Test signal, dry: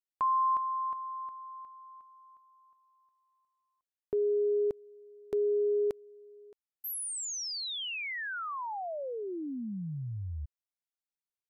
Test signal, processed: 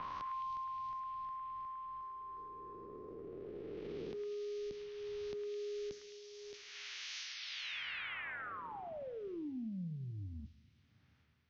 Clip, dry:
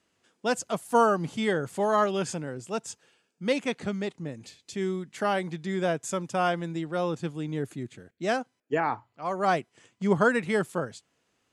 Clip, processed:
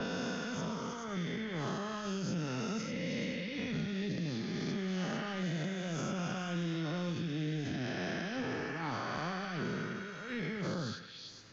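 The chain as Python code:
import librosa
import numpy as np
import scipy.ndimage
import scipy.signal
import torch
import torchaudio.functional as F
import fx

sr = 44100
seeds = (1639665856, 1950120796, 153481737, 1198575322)

p1 = fx.spec_swells(x, sr, rise_s=2.27)
p2 = scipy.signal.sosfilt(scipy.signal.butter(16, 6400.0, 'lowpass', fs=sr, output='sos'), p1)
p3 = fx.env_lowpass(p2, sr, base_hz=1700.0, full_db=-21.5)
p4 = fx.peak_eq(p3, sr, hz=800.0, db=-12.5, octaves=2.8)
p5 = fx.over_compress(p4, sr, threshold_db=-35.0, ratio=-0.5)
p6 = fx.transient(p5, sr, attack_db=-10, sustain_db=7)
p7 = fx.rev_double_slope(p6, sr, seeds[0], early_s=0.73, late_s=2.3, knee_db=-24, drr_db=11.0)
p8 = fx.dynamic_eq(p7, sr, hz=200.0, q=1.1, threshold_db=-51.0, ratio=4.0, max_db=7)
p9 = p8 + fx.echo_stepped(p8, sr, ms=106, hz=1600.0, octaves=0.7, feedback_pct=70, wet_db=-1.5, dry=0)
p10 = fx.band_squash(p9, sr, depth_pct=100)
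y = p10 * librosa.db_to_amplitude(-6.5)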